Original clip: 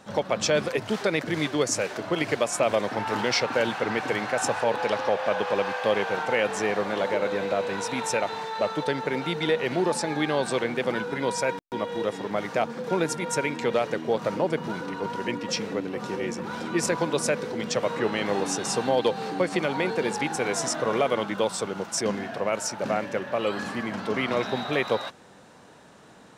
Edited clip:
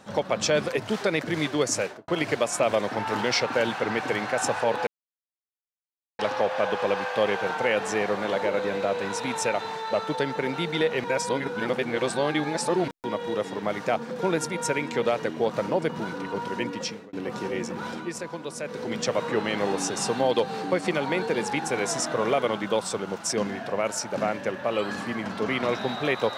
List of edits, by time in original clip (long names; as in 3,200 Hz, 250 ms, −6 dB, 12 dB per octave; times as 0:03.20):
0:01.81–0:02.08: fade out and dull
0:04.87: splice in silence 1.32 s
0:09.72–0:11.56: reverse
0:15.41–0:15.81: fade out
0:16.57–0:17.53: duck −9.5 dB, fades 0.23 s